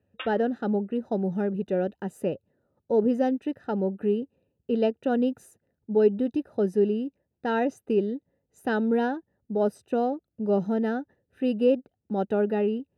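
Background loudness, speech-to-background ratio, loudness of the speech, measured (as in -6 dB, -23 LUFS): -41.5 LUFS, 14.5 dB, -27.0 LUFS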